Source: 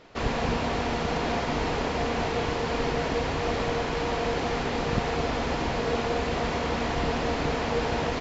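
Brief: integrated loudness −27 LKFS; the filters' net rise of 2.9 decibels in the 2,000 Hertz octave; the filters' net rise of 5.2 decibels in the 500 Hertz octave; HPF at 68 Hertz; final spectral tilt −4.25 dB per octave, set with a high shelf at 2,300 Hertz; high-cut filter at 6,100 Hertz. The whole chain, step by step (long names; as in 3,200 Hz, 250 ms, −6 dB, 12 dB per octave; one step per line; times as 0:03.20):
high-pass filter 68 Hz
low-pass filter 6,100 Hz
parametric band 500 Hz +6 dB
parametric band 2,000 Hz +6.5 dB
high-shelf EQ 2,300 Hz −6.5 dB
level −2 dB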